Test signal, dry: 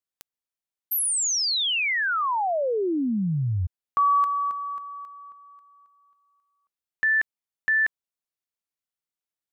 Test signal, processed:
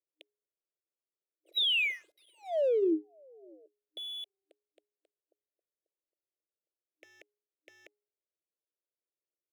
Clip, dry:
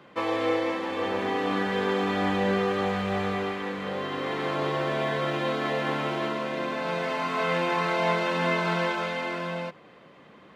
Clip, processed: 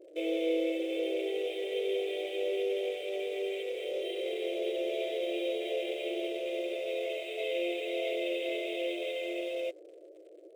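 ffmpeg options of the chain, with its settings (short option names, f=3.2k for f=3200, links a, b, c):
-filter_complex "[0:a]aresample=11025,asoftclip=type=hard:threshold=-22.5dB,aresample=44100,alimiter=level_in=4.5dB:limit=-24dB:level=0:latency=1:release=16,volume=-4.5dB,asuperstop=centerf=1200:order=12:qfactor=0.76,bandreject=f=415.5:t=h:w=4,bandreject=f=831:t=h:w=4,bandreject=f=1.2465k:t=h:w=4,bandreject=f=1.662k:t=h:w=4,bandreject=f=2.0775k:t=h:w=4,bandreject=f=2.493k:t=h:w=4,bandreject=f=2.9085k:t=h:w=4,bandreject=f=3.324k:t=h:w=4,bandreject=f=3.7395k:t=h:w=4,afftfilt=real='re*between(b*sr/4096,310,3900)':imag='im*between(b*sr/4096,310,3900)':win_size=4096:overlap=0.75,acrossover=split=860[a][b];[b]aeval=exprs='sgn(val(0))*max(abs(val(0))-0.00112,0)':c=same[c];[a][c]amix=inputs=2:normalize=0,volume=5dB"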